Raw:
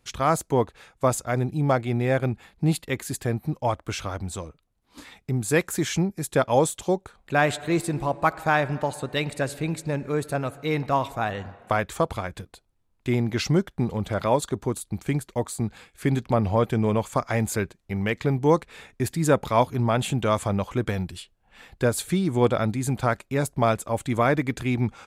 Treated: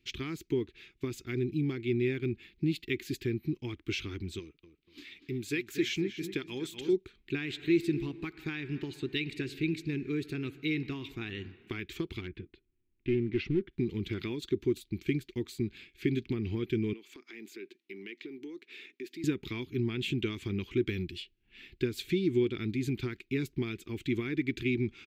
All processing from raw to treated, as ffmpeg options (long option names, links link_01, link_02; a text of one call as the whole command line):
ffmpeg -i in.wav -filter_complex "[0:a]asettb=1/sr,asplit=3[link_01][link_02][link_03];[link_01]atrim=end=4.394[link_04];[link_02]atrim=start=4.39:end=6.93,asetpts=PTS-STARTPTS,afade=type=in:duration=0.004:curve=qsin,afade=type=out:start_time=2.536:duration=0.004:curve=qsin,lowshelf=frequency=290:gain=-8.5,asplit=2[link_05][link_06];[link_06]adelay=241,lowpass=frequency=3000:poles=1,volume=-10.5dB,asplit=2[link_07][link_08];[link_08]adelay=241,lowpass=frequency=3000:poles=1,volume=0.39,asplit=2[link_09][link_10];[link_10]adelay=241,lowpass=frequency=3000:poles=1,volume=0.39,asplit=2[link_11][link_12];[link_12]adelay=241,lowpass=frequency=3000:poles=1,volume=0.39[link_13];[link_05][link_07][link_09][link_11][link_13]amix=inputs=5:normalize=0,atrim=end_sample=112014[link_14];[link_03]atrim=start=6.926[link_15];[link_04][link_14]acrossfade=duration=0.004:curve1=hsin:curve2=qsin[link_16];[link_16][link_15]acrossfade=duration=0.004:curve1=qsin:curve2=hsin,asettb=1/sr,asplit=3[link_17][link_18][link_19];[link_17]atrim=end=12.214[link_20];[link_18]atrim=start=12.21:end=13.73,asetpts=PTS-STARTPTS,afade=type=in:duration=0.004:curve=qsin,afade=type=out:start_time=1.516:duration=0.004:curve=qsin,lowpass=1900,aeval=exprs='clip(val(0),-1,0.0501)':channel_layout=same[link_21];[link_19]atrim=start=13.726[link_22];[link_20][link_21]acrossfade=duration=0.004:curve1=hsin:curve2=qsin[link_23];[link_23][link_22]acrossfade=duration=0.004:curve1=qsin:curve2=hsin,asettb=1/sr,asplit=3[link_24][link_25][link_26];[link_24]atrim=end=16.934[link_27];[link_25]atrim=start=16.93:end=19.24,asetpts=PTS-STARTPTS,afade=type=in:duration=0.004:curve=qsin,afade=type=out:start_time=2.306:duration=0.004:curve=qsin,highpass=frequency=260:width=0.5412,highpass=frequency=260:width=1.3066,acompressor=threshold=-41dB:ratio=3:attack=3.2:release=140:knee=1:detection=peak[link_28];[link_26]atrim=start=19.236[link_29];[link_27][link_28]acrossfade=duration=0.004:curve1=hsin:curve2=qsin[link_30];[link_30][link_29]acrossfade=duration=0.004:curve1=qsin:curve2=hsin,equalizer=frequency=2800:width_type=o:width=2.2:gain=8,acompressor=threshold=-21dB:ratio=6,firequalizer=gain_entry='entry(190,0);entry(370,11);entry(560,-28);entry(860,-21);entry(2300,1);entry(4900,-4);entry(9700,-18);entry(14000,0)':delay=0.05:min_phase=1,volume=-7dB" out.wav